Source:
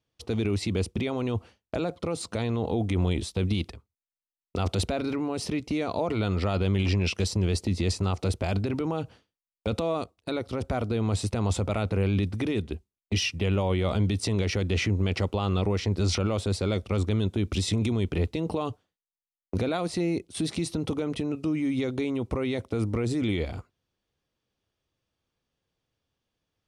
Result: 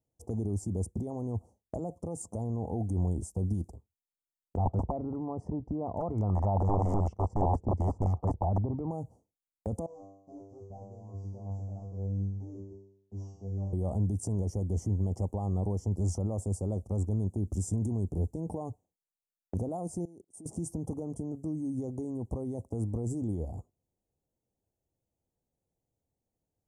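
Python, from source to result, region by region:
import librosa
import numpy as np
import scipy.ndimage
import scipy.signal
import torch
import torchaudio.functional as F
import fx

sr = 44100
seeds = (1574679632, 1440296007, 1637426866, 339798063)

y = fx.chain(x, sr, fx.low_shelf(hz=79.0, db=9.5),
    fx.overflow_wrap(gain_db=17.0),
    fx.filter_held_lowpass(hz=8.4, low_hz=910.0, high_hz=2400.0), at=(4.56, 8.91))
y = fx.chain(y, sr, fx.cvsd(bps=32000),
    fx.comb_fb(f0_hz=98.0, decay_s=0.72, harmonics='all', damping=0.0, mix_pct=100), at=(9.86, 13.73))
y = fx.chain(y, sr, fx.highpass(hz=330.0, slope=6),
    fx.level_steps(step_db=22), at=(20.05, 20.46))
y = scipy.signal.sosfilt(scipy.signal.ellip(3, 1.0, 40, [820.0, 7000.0], 'bandstop', fs=sr, output='sos'), y)
y = fx.dynamic_eq(y, sr, hz=420.0, q=0.8, threshold_db=-41.0, ratio=4.0, max_db=-6)
y = y * librosa.db_to_amplitude(-2.5)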